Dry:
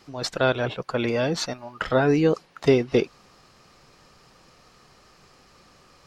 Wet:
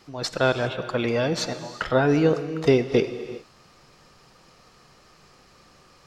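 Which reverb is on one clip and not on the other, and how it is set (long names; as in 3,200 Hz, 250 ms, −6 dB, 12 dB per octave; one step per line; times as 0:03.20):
reverb whose tail is shaped and stops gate 420 ms flat, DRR 10.5 dB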